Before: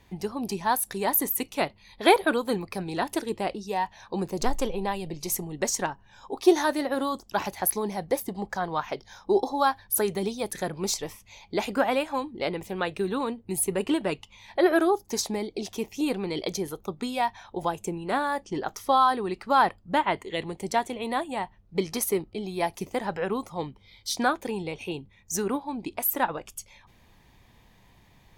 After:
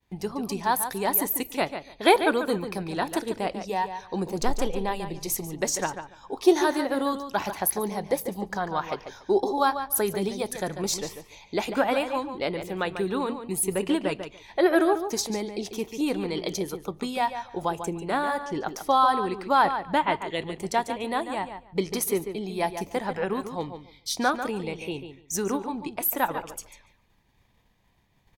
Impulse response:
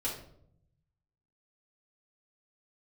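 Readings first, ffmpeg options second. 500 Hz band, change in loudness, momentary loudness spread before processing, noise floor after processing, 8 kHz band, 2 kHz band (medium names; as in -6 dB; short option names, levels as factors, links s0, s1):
+1.0 dB, +0.5 dB, 11 LU, -63 dBFS, +0.5 dB, +0.5 dB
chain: -filter_complex "[0:a]agate=range=0.0224:threshold=0.00355:ratio=3:detection=peak,asplit=2[s0][s1];[s1]adelay=144,lowpass=f=4500:p=1,volume=0.355,asplit=2[s2][s3];[s3]adelay=144,lowpass=f=4500:p=1,volume=0.17,asplit=2[s4][s5];[s5]adelay=144,lowpass=f=4500:p=1,volume=0.17[s6];[s0][s2][s4][s6]amix=inputs=4:normalize=0,asplit=2[s7][s8];[1:a]atrim=start_sample=2205[s9];[s8][s9]afir=irnorm=-1:irlink=0,volume=0.0501[s10];[s7][s10]amix=inputs=2:normalize=0"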